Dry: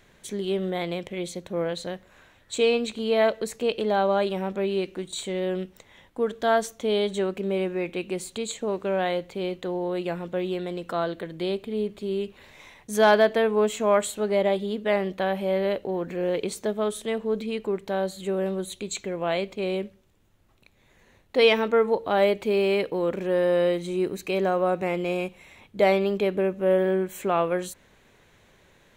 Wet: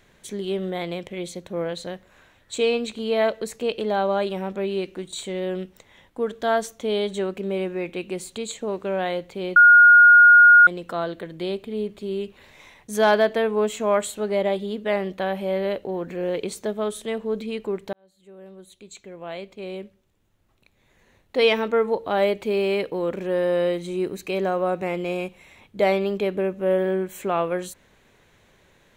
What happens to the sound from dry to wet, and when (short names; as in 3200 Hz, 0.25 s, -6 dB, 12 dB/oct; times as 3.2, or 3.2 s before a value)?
9.56–10.67 bleep 1430 Hz -7.5 dBFS
17.93–21.51 fade in